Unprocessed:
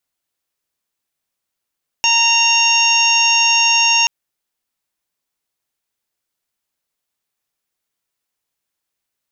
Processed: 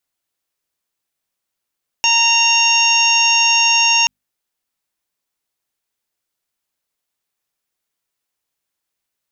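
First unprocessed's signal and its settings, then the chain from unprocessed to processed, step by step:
steady harmonic partials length 2.03 s, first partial 924 Hz, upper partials −13/5.5/−8/−16/2/0 dB, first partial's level −19 dB
mains-hum notches 50/100/150/200/250 Hz

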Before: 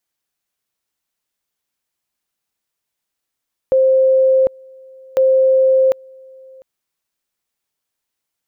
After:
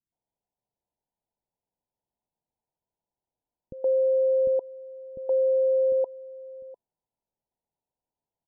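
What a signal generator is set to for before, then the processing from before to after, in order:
tone at two levels in turn 526 Hz −9 dBFS, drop 28.5 dB, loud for 0.75 s, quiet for 0.70 s, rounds 2
Chebyshev low-pass filter 1,000 Hz, order 10
brickwall limiter −18.5 dBFS
multiband delay without the direct sound lows, highs 120 ms, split 320 Hz

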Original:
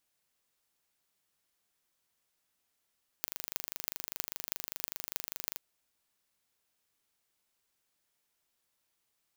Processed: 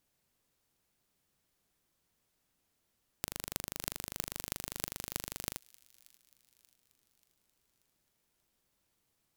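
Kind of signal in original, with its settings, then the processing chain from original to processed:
impulse train 25 per second, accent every 8, −5 dBFS 2.36 s
low-shelf EQ 450 Hz +12 dB
pitch vibrato 2.2 Hz 9.1 cents
delay with a high-pass on its return 584 ms, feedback 50%, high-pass 2,500 Hz, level −22.5 dB

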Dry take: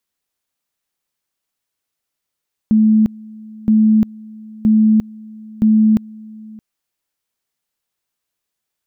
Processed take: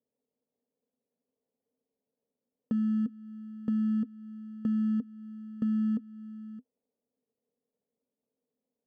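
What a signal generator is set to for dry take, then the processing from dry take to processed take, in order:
tone at two levels in turn 217 Hz −8 dBFS, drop 24 dB, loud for 0.35 s, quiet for 0.62 s, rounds 4
decimation without filtering 29×
pair of resonant band-passes 340 Hz, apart 0.84 octaves
downward compressor 2 to 1, threshold −34 dBFS

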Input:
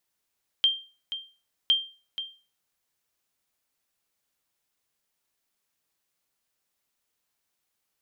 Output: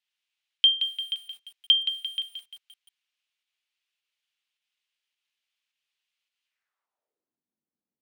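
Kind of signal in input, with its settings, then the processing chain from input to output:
ping with an echo 3,170 Hz, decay 0.35 s, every 1.06 s, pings 2, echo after 0.48 s, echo −12 dB −14 dBFS
band-pass filter sweep 2,900 Hz → 230 Hz, 0:06.45–0:07.40
in parallel at −1 dB: fake sidechain pumping 105 BPM, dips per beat 1, −13 dB, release 114 ms
on the sum: feedback echo at a low word length 173 ms, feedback 55%, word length 8 bits, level −8 dB

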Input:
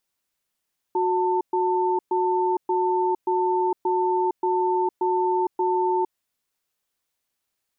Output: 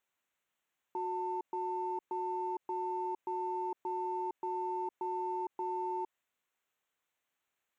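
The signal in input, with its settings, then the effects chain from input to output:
tone pair in a cadence 366 Hz, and 893 Hz, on 0.46 s, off 0.12 s, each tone −22 dBFS 5.18 s
adaptive Wiener filter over 9 samples
spectral tilt +2.5 dB per octave
brickwall limiter −30 dBFS

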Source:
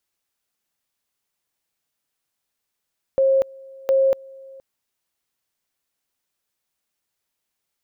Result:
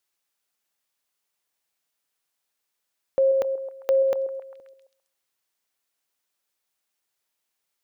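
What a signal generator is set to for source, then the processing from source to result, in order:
tone at two levels in turn 537 Hz −13.5 dBFS, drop 25 dB, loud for 0.24 s, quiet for 0.47 s, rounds 2
low-shelf EQ 260 Hz −9.5 dB
on a send: echo through a band-pass that steps 133 ms, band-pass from 430 Hz, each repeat 0.7 octaves, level −10 dB

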